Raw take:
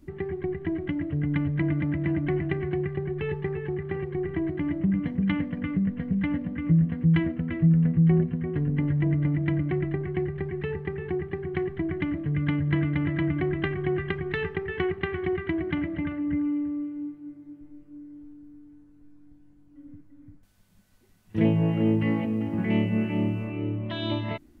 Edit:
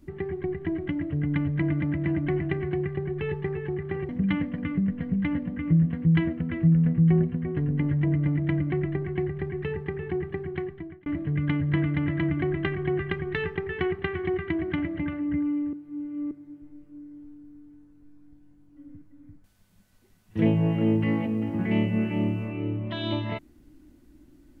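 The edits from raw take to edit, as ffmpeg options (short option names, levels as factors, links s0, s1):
-filter_complex "[0:a]asplit=5[s0][s1][s2][s3][s4];[s0]atrim=end=4.092[s5];[s1]atrim=start=5.078:end=12.05,asetpts=PTS-STARTPTS,afade=t=out:st=6.302:d=0.67[s6];[s2]atrim=start=12.05:end=16.722,asetpts=PTS-STARTPTS,afade=t=in:d=0.004:c=hsin[s7];[s3]atrim=start=16.718:end=17.302,asetpts=PTS-STARTPTS,areverse[s8];[s4]atrim=start=17.298[s9];[s6][s7]concat=n=2:v=0:a=1[s10];[s5][s10]acrossfade=d=0.004:c1=hsin:c2=hsin[s11];[s11][s8]acrossfade=d=0.004:c1=hsin:c2=hsin[s12];[s12][s9]acrossfade=d=0.004:c1=hsin:c2=hsin"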